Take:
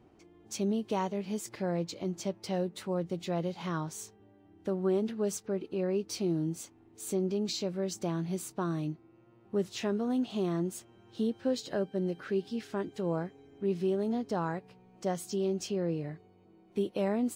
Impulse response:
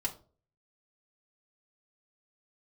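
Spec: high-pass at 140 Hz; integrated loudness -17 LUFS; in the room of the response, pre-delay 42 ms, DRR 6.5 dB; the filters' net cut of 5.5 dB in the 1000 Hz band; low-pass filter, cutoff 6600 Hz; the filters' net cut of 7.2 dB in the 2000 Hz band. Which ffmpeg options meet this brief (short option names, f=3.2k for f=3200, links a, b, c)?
-filter_complex "[0:a]highpass=140,lowpass=6.6k,equalizer=f=1k:t=o:g=-6,equalizer=f=2k:t=o:g=-7.5,asplit=2[a][b];[1:a]atrim=start_sample=2205,adelay=42[c];[b][c]afir=irnorm=-1:irlink=0,volume=-9.5dB[d];[a][d]amix=inputs=2:normalize=0,volume=17.5dB"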